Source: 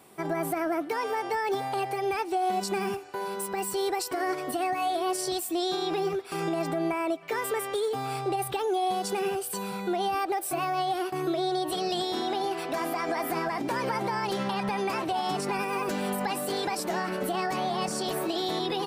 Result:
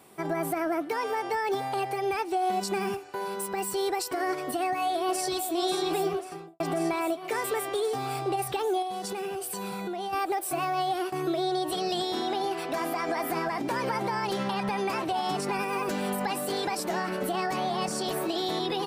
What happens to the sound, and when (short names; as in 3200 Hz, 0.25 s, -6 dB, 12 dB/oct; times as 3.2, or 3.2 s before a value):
4.54–5.53 echo throw 0.54 s, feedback 80%, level -8 dB
6.05–6.6 studio fade out
8.82–10.13 compressor, threshold -30 dBFS